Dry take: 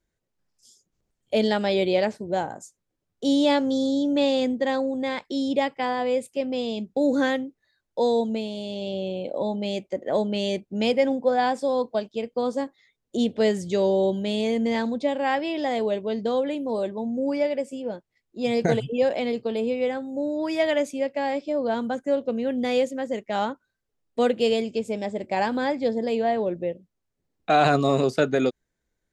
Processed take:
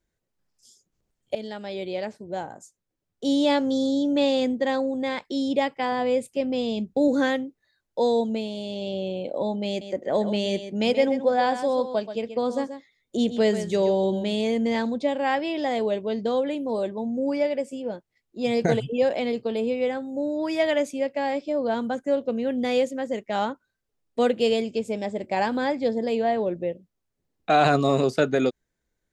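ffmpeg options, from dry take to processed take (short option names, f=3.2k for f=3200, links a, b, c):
-filter_complex "[0:a]asettb=1/sr,asplit=3[a][b][c];[a]atrim=end=5.924[d];[b]atrim=start=5.92:end=7.08,asetpts=PTS-STARTPTS,afade=t=in:d=0.004:c=qsin,afade=t=out:st=1.156:d=0.004:c=qsin,lowshelf=f=150:g=9[e];[c]atrim=start=7.076[f];[d][e]acrossfade=d=0.004:c1=hsin:c2=qsin[g];[g][f]acrossfade=d=0.004:c1=qsin:c2=hsin,asettb=1/sr,asplit=3[h][i][j];[h]atrim=end=9.684[k];[i]atrim=start=9.68:end=14.34,asetpts=PTS-STARTPTS,afade=t=in:d=0.004:c=qsin,afade=t=out:st=4.656:d=0.004:c=qsin,aecho=1:1:131:0.299,atrim=end_sample=205506[l];[j]atrim=start=14.336[m];[k][l]acrossfade=d=0.004:c1=hsin:c2=qsin[n];[n][m]acrossfade=d=0.004:c1=qsin:c2=hsin,asplit=2[o][p];[o]atrim=end=1.35,asetpts=PTS-STARTPTS,afade=t=out:st=1.346:d=0.004:c=hsin:silence=0.177828[q];[p]atrim=start=1.35,asetpts=PTS-STARTPTS,afade=t=in:d=2.41:silence=0.177828[r];[q][r]concat=n=2:v=0:a=1"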